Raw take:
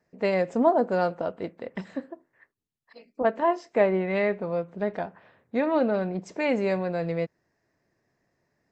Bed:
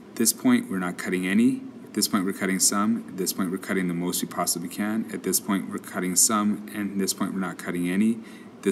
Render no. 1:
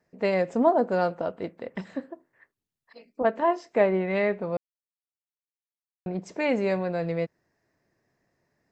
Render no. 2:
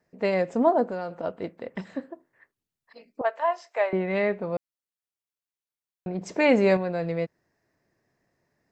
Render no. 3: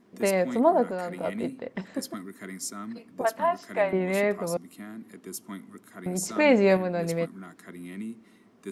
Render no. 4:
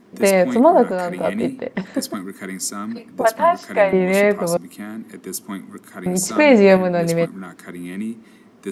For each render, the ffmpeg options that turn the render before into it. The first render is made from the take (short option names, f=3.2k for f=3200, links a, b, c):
-filter_complex "[0:a]asplit=3[a][b][c];[a]atrim=end=4.57,asetpts=PTS-STARTPTS,afade=t=out:st=4.566:d=0.004:c=hsin[d];[b]atrim=start=4.57:end=6.06,asetpts=PTS-STARTPTS,volume=0[e];[c]atrim=start=6.06,asetpts=PTS-STARTPTS,afade=t=in:d=0.004:c=hsin[f];[d][e][f]concat=n=3:v=0:a=1"
-filter_complex "[0:a]asettb=1/sr,asplit=3[a][b][c];[a]atrim=end=0.834[d];[b]atrim=start=0.83:end=1.24,asetpts=PTS-STARTPTS,afade=t=in:d=0.004:c=qsin,afade=t=out:st=0.406:d=0.004:c=qsin,acompressor=threshold=-30dB:ratio=3:attack=3.2:release=140:knee=1:detection=peak[e];[c]atrim=start=1.236[f];[d][e]acrossfade=d=0.004:c1=hsin:c2=qsin[g];[g][f]acrossfade=d=0.004:c1=qsin:c2=hsin,asettb=1/sr,asplit=3[h][i][j];[h]atrim=end=3.214[k];[i]atrim=start=3.21:end=3.93,asetpts=PTS-STARTPTS,afade=t=in:d=0.004:c=qsin,afade=t=out:st=0.716:d=0.004:c=qsin,highpass=f=610:w=0.5412,highpass=f=610:w=1.3066[l];[j]atrim=start=3.926[m];[k][l]acrossfade=d=0.004:c1=hsin:c2=qsin[n];[n][m]acrossfade=d=0.004:c1=qsin:c2=hsin,asplit=3[o][p][q];[o]atrim=end=6.212[r];[p]atrim=start=6.208:end=6.772,asetpts=PTS-STARTPTS,volume=5.5dB[s];[q]atrim=start=6.768[t];[r][s]acrossfade=d=0.004:c1=hsin:c2=hsin[u];[u][t]acrossfade=d=0.004:c1=hsin:c2=hsin"
-filter_complex "[1:a]volume=-14.5dB[a];[0:a][a]amix=inputs=2:normalize=0"
-af "volume=9.5dB,alimiter=limit=-2dB:level=0:latency=1"